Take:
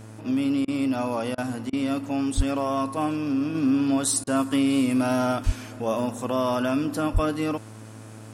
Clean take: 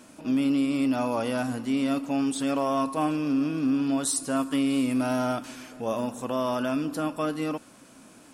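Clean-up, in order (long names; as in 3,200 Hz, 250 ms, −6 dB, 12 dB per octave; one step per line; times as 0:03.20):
hum removal 109.4 Hz, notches 19
0:02.36–0:02.48: high-pass filter 140 Hz 24 dB per octave
0:05.45–0:05.57: high-pass filter 140 Hz 24 dB per octave
0:07.13–0:07.25: high-pass filter 140 Hz 24 dB per octave
repair the gap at 0:00.65/0:01.35/0:01.70/0:04.24, 28 ms
0:03.55: level correction −3 dB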